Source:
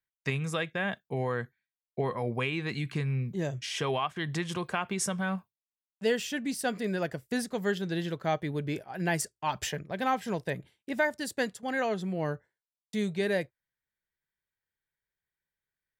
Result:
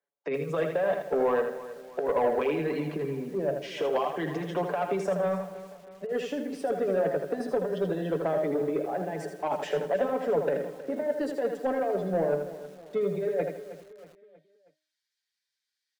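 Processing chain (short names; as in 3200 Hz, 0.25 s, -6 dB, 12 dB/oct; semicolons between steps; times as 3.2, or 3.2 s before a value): spectral gate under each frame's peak -30 dB strong; steep high-pass 150 Hz 96 dB/oct; comb 7 ms, depth 65%; de-hum 309.9 Hz, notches 32; in parallel at -1.5 dB: limiter -21 dBFS, peak gain reduction 7.5 dB; on the sum: negative-ratio compressor -26 dBFS, ratio -0.5; band-pass sweep 540 Hz -> 4700 Hz, 13.39–14.57; soft clip -27.5 dBFS, distortion -17 dB; feedback echo 0.318 s, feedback 48%, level -15.5 dB; lo-fi delay 80 ms, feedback 35%, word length 10-bit, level -6 dB; gain +8 dB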